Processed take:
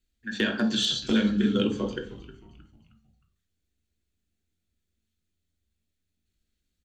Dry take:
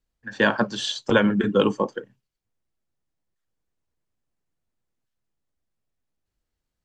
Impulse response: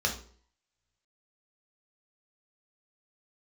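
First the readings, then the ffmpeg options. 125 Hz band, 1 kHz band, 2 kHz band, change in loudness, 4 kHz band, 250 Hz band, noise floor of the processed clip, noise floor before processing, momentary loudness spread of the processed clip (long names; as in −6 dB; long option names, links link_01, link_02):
−3.0 dB, −12.5 dB, −7.5 dB, −3.0 dB, +1.5 dB, −1.0 dB, −81 dBFS, −83 dBFS, 14 LU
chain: -filter_complex "[0:a]equalizer=frequency=125:width_type=o:width=1:gain=-10,equalizer=frequency=250:width_type=o:width=1:gain=4,equalizer=frequency=500:width_type=o:width=1:gain=-4,equalizer=frequency=1000:width_type=o:width=1:gain=-10,equalizer=frequency=2000:width_type=o:width=1:gain=-4,equalizer=frequency=4000:width_type=o:width=1:gain=6,acompressor=threshold=-25dB:ratio=16,asoftclip=type=hard:threshold=-18.5dB,asplit=5[link_01][link_02][link_03][link_04][link_05];[link_02]adelay=312,afreqshift=-84,volume=-17dB[link_06];[link_03]adelay=624,afreqshift=-168,volume=-24.1dB[link_07];[link_04]adelay=936,afreqshift=-252,volume=-31.3dB[link_08];[link_05]adelay=1248,afreqshift=-336,volume=-38.4dB[link_09];[link_01][link_06][link_07][link_08][link_09]amix=inputs=5:normalize=0,asplit=2[link_10][link_11];[1:a]atrim=start_sample=2205,highshelf=frequency=6500:gain=-6[link_12];[link_11][link_12]afir=irnorm=-1:irlink=0,volume=-9dB[link_13];[link_10][link_13]amix=inputs=2:normalize=0,volume=2.5dB"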